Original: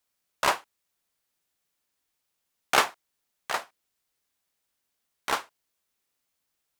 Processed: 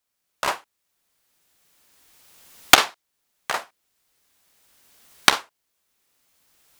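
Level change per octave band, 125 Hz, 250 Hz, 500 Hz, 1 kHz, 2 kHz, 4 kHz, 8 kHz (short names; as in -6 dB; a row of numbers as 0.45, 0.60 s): +8.0, +8.5, +3.0, +4.5, +7.0, +11.5, +10.5 dB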